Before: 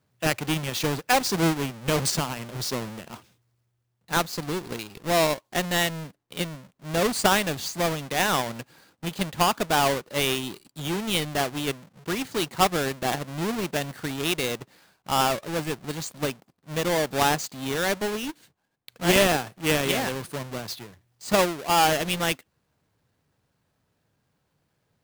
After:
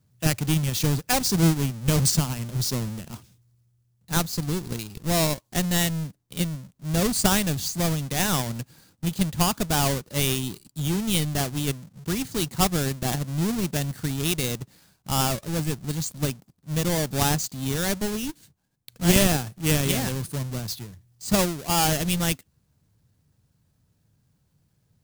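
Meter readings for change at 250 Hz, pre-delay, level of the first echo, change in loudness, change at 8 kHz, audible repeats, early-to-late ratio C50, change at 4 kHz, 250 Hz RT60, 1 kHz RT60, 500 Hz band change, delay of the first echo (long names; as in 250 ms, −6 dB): +3.5 dB, no reverb audible, no echo audible, +0.5 dB, +4.0 dB, no echo audible, no reverb audible, −0.5 dB, no reverb audible, no reverb audible, −3.5 dB, no echo audible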